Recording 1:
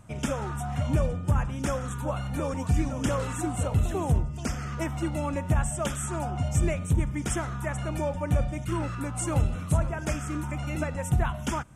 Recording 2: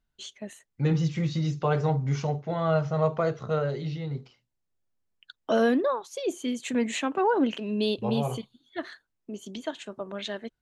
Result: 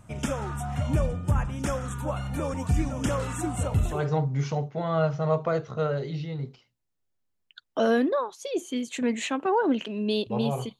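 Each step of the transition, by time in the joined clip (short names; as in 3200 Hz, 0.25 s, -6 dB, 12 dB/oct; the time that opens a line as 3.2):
recording 1
3.97 switch to recording 2 from 1.69 s, crossfade 0.20 s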